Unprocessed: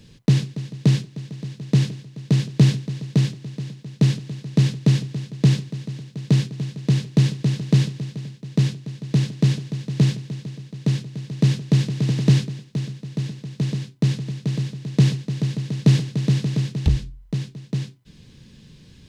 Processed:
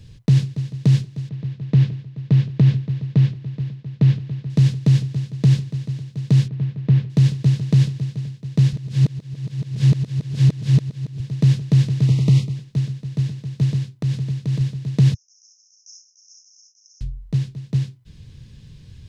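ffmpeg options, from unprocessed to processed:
ffmpeg -i in.wav -filter_complex "[0:a]asettb=1/sr,asplit=3[link_01][link_02][link_03];[link_01]atrim=end=1.294[link_04];[link_02]atrim=start=1.29:end=4.5,asetpts=PTS-STARTPTS,afade=type=in:duration=0.004:curve=qsin,afade=type=out:start_time=3.206:duration=0.004:curve=qsin,lowpass=3200[link_05];[link_03]atrim=start=4.496[link_06];[link_04][link_05]acrossfade=duration=0.004:curve1=hsin:curve2=qsin[link_07];[link_07][link_06]acrossfade=duration=0.004:curve1=qsin:curve2=hsin,asettb=1/sr,asplit=3[link_08][link_09][link_10];[link_08]atrim=end=6.484[link_11];[link_09]atrim=start=6.48:end=7.1,asetpts=PTS-STARTPTS,afade=type=in:duration=0.004:curve=qsin,afade=type=out:start_time=0.616:duration=0.004:curve=qsin,lowpass=2500[link_12];[link_10]atrim=start=7.096[link_13];[link_11][link_12]acrossfade=duration=0.004:curve1=hsin:curve2=qsin[link_14];[link_14][link_13]acrossfade=duration=0.004:curve1=qsin:curve2=hsin,asettb=1/sr,asplit=3[link_15][link_16][link_17];[link_15]atrim=end=12.074[link_18];[link_16]atrim=start=12.07:end=12.56,asetpts=PTS-STARTPTS,afade=type=in:duration=0.004:curve=qsin,afade=type=out:start_time=0.486:duration=0.004:curve=qsin,asuperstop=centerf=1600:order=12:qfactor=2.8[link_19];[link_17]atrim=start=12.556[link_20];[link_18][link_19]acrossfade=duration=0.004:curve1=hsin:curve2=qsin[link_21];[link_21][link_20]acrossfade=duration=0.004:curve1=qsin:curve2=hsin,asettb=1/sr,asplit=3[link_22][link_23][link_24];[link_22]atrim=end=13.884[link_25];[link_23]atrim=start=13.88:end=14.61,asetpts=PTS-STARTPTS,afade=type=in:duration=0.004:curve=qsin,afade=type=out:start_time=0.726:duration=0.004:curve=qsin,acompressor=threshold=-21dB:ratio=10:attack=3.2:release=140:knee=1:detection=peak[link_26];[link_24]atrim=start=14.606[link_27];[link_25][link_26]acrossfade=duration=0.004:curve1=hsin:curve2=qsin[link_28];[link_28][link_27]acrossfade=duration=0.004:curve1=qsin:curve2=hsin,asettb=1/sr,asplit=3[link_29][link_30][link_31];[link_29]atrim=end=15.144[link_32];[link_30]atrim=start=15.14:end=17.01,asetpts=PTS-STARTPTS,afade=type=in:duration=0.004:curve=qsin,afade=type=out:start_time=1.866:duration=0.004:curve=qsin,asuperpass=centerf=5900:order=12:qfactor=3.9[link_33];[link_31]atrim=start=17.006[link_34];[link_32][link_33]acrossfade=duration=0.004:curve1=hsin:curve2=qsin[link_35];[link_35][link_34]acrossfade=duration=0.004:curve1=qsin:curve2=hsin,asplit=3[link_36][link_37][link_38];[link_36]atrim=end=8.732[link_39];[link_37]atrim=start=8.728:end=11.202,asetpts=PTS-STARTPTS,areverse[link_40];[link_38]atrim=start=11.198[link_41];[link_39][link_40]acrossfade=duration=0.004:curve1=hsin:curve2=hsin[link_42];[link_42][link_41]acrossfade=duration=0.004:curve1=hsin:curve2=hsin,lowshelf=frequency=150:width_type=q:width=1.5:gain=9.5,alimiter=level_in=4dB:limit=-1dB:release=50:level=0:latency=1,volume=-6dB" out.wav

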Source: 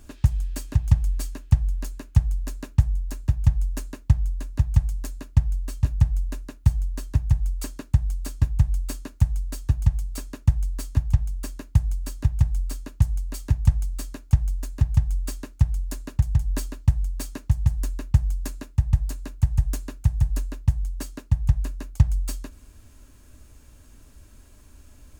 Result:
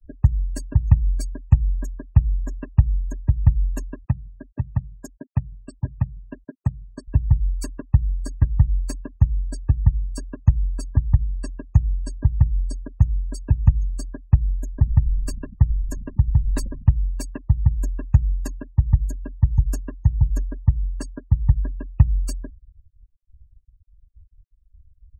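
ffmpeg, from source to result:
ffmpeg -i in.wav -filter_complex "[0:a]asettb=1/sr,asplit=3[link_01][link_02][link_03];[link_01]atrim=end=4.054[link_04];[link_02]atrim=start=4.05:end=7.08,asetpts=PTS-STARTPTS,afade=type=in:duration=0.004:curve=qsin,afade=type=out:start_time=3.026:duration=0.004:curve=qsin,highpass=130[link_05];[link_03]atrim=start=7.076[link_06];[link_04][link_05]acrossfade=duration=0.004:curve1=hsin:curve2=qsin[link_07];[link_07][link_06]acrossfade=duration=0.004:curve1=qsin:curve2=hsin,asettb=1/sr,asplit=3[link_08][link_09][link_10];[link_08]atrim=end=14.664[link_11];[link_09]atrim=start=14.66:end=16.92,asetpts=PTS-STARTPTS,afade=type=in:duration=0.004:curve=qsin,afade=type=out:start_time=2.256:duration=0.004:curve=qsin,asplit=5[link_12][link_13][link_14][link_15][link_16];[link_13]adelay=88,afreqshift=-60,volume=-12.5dB[link_17];[link_14]adelay=176,afreqshift=-120,volume=-20.7dB[link_18];[link_15]adelay=264,afreqshift=-180,volume=-28.9dB[link_19];[link_16]adelay=352,afreqshift=-240,volume=-37dB[link_20];[link_12][link_17][link_18][link_19][link_20]amix=inputs=5:normalize=0,atrim=end_sample=99666[link_21];[link_10]atrim=start=16.916[link_22];[link_11][link_21]acrossfade=duration=0.004:curve1=hsin:curve2=qsin[link_23];[link_23][link_22]acrossfade=duration=0.004:curve1=qsin:curve2=hsin,agate=range=-33dB:threshold=-43dB:ratio=3:detection=peak,afftfilt=real='re*gte(hypot(re,im),0.02)':imag='im*gte(hypot(re,im),0.02)':win_size=1024:overlap=0.75,volume=3dB" out.wav

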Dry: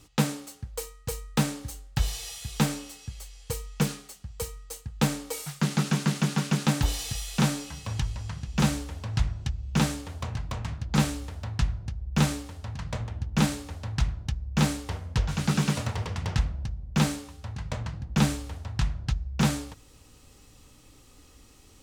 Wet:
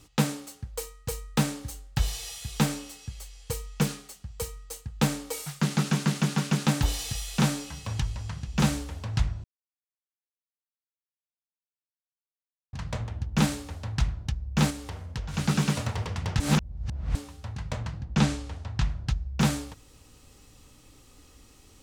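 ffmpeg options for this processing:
ffmpeg -i in.wav -filter_complex "[0:a]asettb=1/sr,asplit=3[link_01][link_02][link_03];[link_01]atrim=end=14.704[link_04];[link_02]atrim=start=14.7:end=15.34,asetpts=PTS-STARTPTS,afade=type=in:duration=0.004:curve=qsin,afade=type=out:start_time=0.636:duration=0.004:curve=qsin,acompressor=threshold=-36dB:ratio=2:attack=3.2:release=140:knee=1:detection=peak[link_05];[link_03]atrim=start=15.336[link_06];[link_04][link_05]acrossfade=duration=0.004:curve1=hsin:curve2=qsin[link_07];[link_07][link_06]acrossfade=duration=0.004:curve1=qsin:curve2=hsin,asettb=1/sr,asplit=3[link_08][link_09][link_10];[link_08]atrim=end=18.014[link_11];[link_09]atrim=start=18.01:end=18.89,asetpts=PTS-STARTPTS,afade=type=in:duration=0.004:curve=qsin,afade=type=out:start_time=0.876:duration=0.004:curve=qsin,lowpass=7400[link_12];[link_10]atrim=start=18.886[link_13];[link_11][link_12]acrossfade=duration=0.004:curve1=hsin:curve2=qsin[link_14];[link_14][link_13]acrossfade=duration=0.004:curve1=qsin:curve2=hsin,asplit=5[link_15][link_16][link_17][link_18][link_19];[link_15]atrim=end=9.44,asetpts=PTS-STARTPTS,afade=type=out:start_time=9.436:duration=0.004:curve=hsin[link_20];[link_16]atrim=start=9.44:end=12.73,asetpts=PTS-STARTPTS,volume=0[link_21];[link_17]atrim=start=12.73:end=16.402,asetpts=PTS-STARTPTS,afade=type=in:duration=0.004:curve=hsin[link_22];[link_18]atrim=start=16.398:end=17.152,asetpts=PTS-STARTPTS,areverse[link_23];[link_19]atrim=start=17.148[link_24];[link_20][link_21][link_22]concat=n=3:v=0:a=1[link_25];[link_25][link_23]acrossfade=duration=0.004:curve1=hsin:curve2=hsin[link_26];[link_26][link_24]acrossfade=duration=0.004:curve1=hsin:curve2=hsin" out.wav

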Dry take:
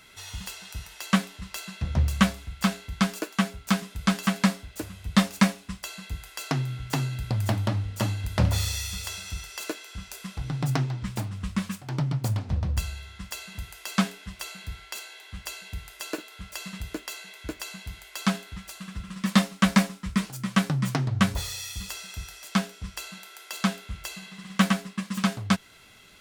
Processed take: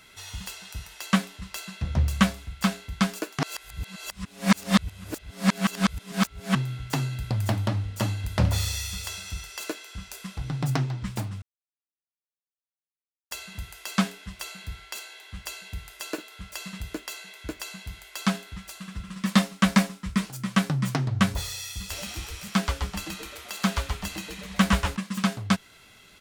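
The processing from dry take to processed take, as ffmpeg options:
ffmpeg -i in.wav -filter_complex "[0:a]asplit=3[link_01][link_02][link_03];[link_01]afade=type=out:start_time=21.9:duration=0.02[link_04];[link_02]asplit=9[link_05][link_06][link_07][link_08][link_09][link_10][link_11][link_12][link_13];[link_06]adelay=128,afreqshift=-130,volume=-3.5dB[link_14];[link_07]adelay=256,afreqshift=-260,volume=-8.2dB[link_15];[link_08]adelay=384,afreqshift=-390,volume=-13dB[link_16];[link_09]adelay=512,afreqshift=-520,volume=-17.7dB[link_17];[link_10]adelay=640,afreqshift=-650,volume=-22.4dB[link_18];[link_11]adelay=768,afreqshift=-780,volume=-27.2dB[link_19];[link_12]adelay=896,afreqshift=-910,volume=-31.9dB[link_20];[link_13]adelay=1024,afreqshift=-1040,volume=-36.6dB[link_21];[link_05][link_14][link_15][link_16][link_17][link_18][link_19][link_20][link_21]amix=inputs=9:normalize=0,afade=type=in:start_time=21.9:duration=0.02,afade=type=out:start_time=24.95:duration=0.02[link_22];[link_03]afade=type=in:start_time=24.95:duration=0.02[link_23];[link_04][link_22][link_23]amix=inputs=3:normalize=0,asplit=5[link_24][link_25][link_26][link_27][link_28];[link_24]atrim=end=3.392[link_29];[link_25]atrim=start=3.388:end=6.552,asetpts=PTS-STARTPTS,areverse[link_30];[link_26]atrim=start=6.548:end=11.42,asetpts=PTS-STARTPTS,afade=type=out:start_time=4.868:duration=0.004:curve=hsin[link_31];[link_27]atrim=start=11.42:end=13.31,asetpts=PTS-STARTPTS,volume=0[link_32];[link_28]atrim=start=13.31,asetpts=PTS-STARTPTS,afade=type=in:duration=0.004:curve=hsin[link_33];[link_29][link_30]acrossfade=duration=0.004:curve1=hsin:curve2=hsin[link_34];[link_31][link_32][link_33]concat=n=3:v=0:a=1[link_35];[link_34][link_35]acrossfade=duration=0.004:curve1=hsin:curve2=hsin" out.wav

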